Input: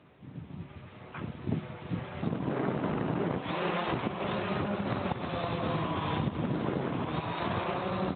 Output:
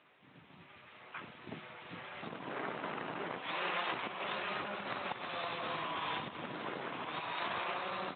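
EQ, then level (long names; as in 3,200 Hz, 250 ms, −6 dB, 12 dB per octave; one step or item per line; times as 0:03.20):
resonant band-pass 2,800 Hz, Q 0.58
high-frequency loss of the air 65 metres
+1.5 dB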